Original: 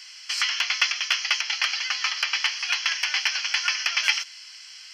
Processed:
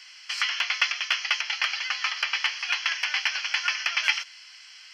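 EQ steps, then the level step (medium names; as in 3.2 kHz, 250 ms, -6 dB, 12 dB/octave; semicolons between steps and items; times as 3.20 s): tone controls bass +7 dB, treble -8 dB; 0.0 dB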